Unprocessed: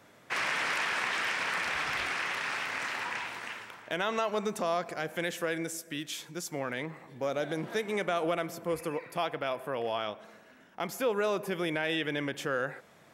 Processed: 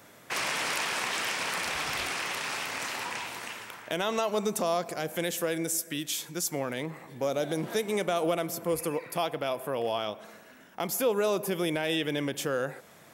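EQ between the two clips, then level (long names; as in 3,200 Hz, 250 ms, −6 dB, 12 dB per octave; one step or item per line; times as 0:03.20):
high-shelf EQ 8,000 Hz +12 dB
dynamic equaliser 1,700 Hz, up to −7 dB, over −45 dBFS, Q 1.1
+3.5 dB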